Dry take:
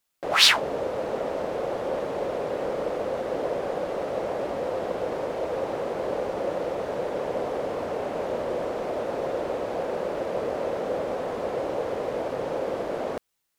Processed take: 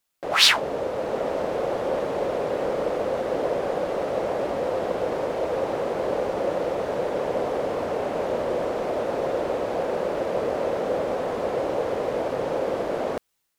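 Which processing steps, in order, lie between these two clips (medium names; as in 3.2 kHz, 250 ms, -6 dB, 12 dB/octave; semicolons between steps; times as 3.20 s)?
level rider gain up to 3 dB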